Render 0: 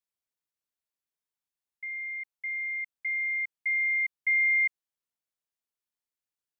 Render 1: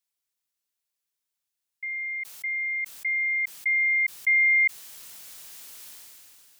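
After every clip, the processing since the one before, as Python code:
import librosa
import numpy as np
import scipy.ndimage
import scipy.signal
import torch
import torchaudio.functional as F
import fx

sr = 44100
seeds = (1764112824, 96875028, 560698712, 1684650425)

y = fx.high_shelf(x, sr, hz=2000.0, db=9.5)
y = fx.sustainer(y, sr, db_per_s=20.0)
y = F.gain(torch.from_numpy(y), -1.0).numpy()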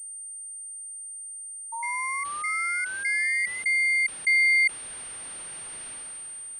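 y = fx.spec_paint(x, sr, seeds[0], shape='rise', start_s=1.72, length_s=1.91, low_hz=900.0, high_hz=2100.0, level_db=-34.0)
y = fx.pwm(y, sr, carrier_hz=8800.0)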